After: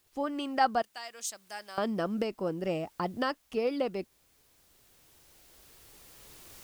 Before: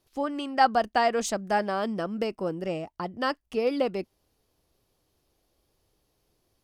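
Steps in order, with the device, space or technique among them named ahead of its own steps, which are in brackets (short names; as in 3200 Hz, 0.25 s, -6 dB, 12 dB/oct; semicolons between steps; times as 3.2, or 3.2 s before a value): 0.82–1.78 pre-emphasis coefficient 0.97; cheap recorder with automatic gain (white noise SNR 35 dB; recorder AGC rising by 7 dB/s); gain -5 dB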